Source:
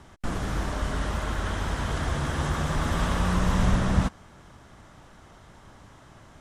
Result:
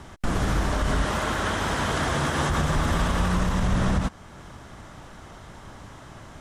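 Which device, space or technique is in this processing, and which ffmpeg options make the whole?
stacked limiters: -filter_complex "[0:a]asettb=1/sr,asplit=3[link_01][link_02][link_03];[link_01]atrim=end=1.054[link_04];[link_02]atrim=start=1.05:end=2.5,asetpts=PTS-STARTPTS,afade=type=in:duration=0.004:curve=qsin,afade=type=out:start_time=1.446:duration=0.004:curve=qsin,highpass=frequency=190:poles=1[link_05];[link_03]atrim=start=2.496[link_06];[link_04][link_05]acrossfade=duration=0.004:curve1=hsin:curve2=qsin[link_07];[link_07][link_06]acrossfade=duration=0.004:curve1=qsin:curve2=hsin,alimiter=limit=-14.5dB:level=0:latency=1:release=422,alimiter=limit=-21.5dB:level=0:latency=1:release=72,volume=7dB"

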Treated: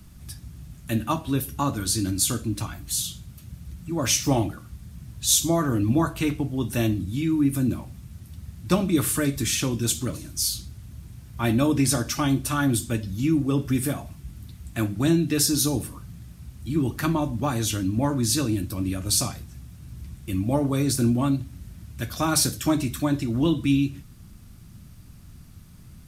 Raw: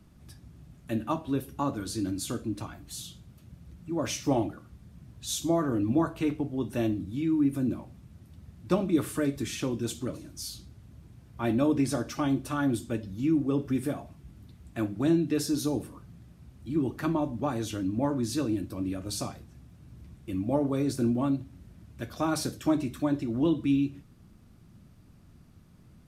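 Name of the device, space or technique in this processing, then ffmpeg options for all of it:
smiley-face EQ: -af "lowshelf=frequency=120:gain=4,equalizer=frequency=440:width_type=o:width=2.3:gain=-7.5,highshelf=frequency=5700:gain=9,volume=8.5dB"

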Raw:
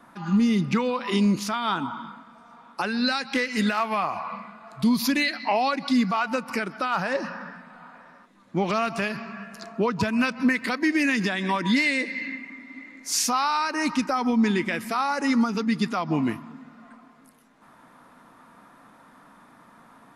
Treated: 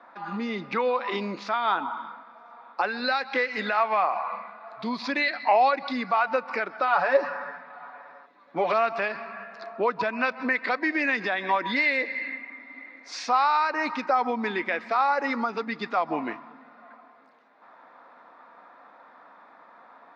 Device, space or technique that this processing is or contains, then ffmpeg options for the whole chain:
phone earpiece: -filter_complex "[0:a]asettb=1/sr,asplit=3[link_01][link_02][link_03];[link_01]atrim=end=6.874[link_04];[link_02]atrim=start=6.87:end=8.73,asetpts=PTS-STARTPTS,afade=type=in:duration=0.004:curve=qsin,afade=type=out:start_time=1.856:duration=0.004:curve=qsin,aecho=1:1:7:0.7,atrim=end_sample=82026[link_05];[link_03]atrim=start=8.726[link_06];[link_04][link_05]acrossfade=duration=0.004:curve1=hsin:curve2=qsin[link_07];[link_07][link_06]acrossfade=duration=0.004:curve1=qsin:curve2=hsin,highpass=480,equalizer=frequency=530:width_type=q:width=4:gain=4,equalizer=frequency=750:width_type=q:width=4:gain=4,equalizer=frequency=3000:width_type=q:width=4:gain=-9,lowpass=frequency=3800:width=0.5412,lowpass=frequency=3800:width=1.3066,volume=1.5dB"

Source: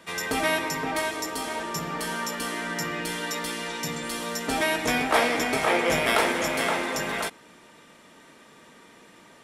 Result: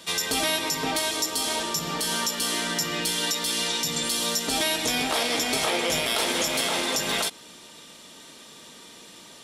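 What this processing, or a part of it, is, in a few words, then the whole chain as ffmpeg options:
over-bright horn tweeter: -af "highshelf=frequency=2700:width_type=q:width=1.5:gain=9,alimiter=limit=-16.5dB:level=0:latency=1:release=147,volume=2dB"

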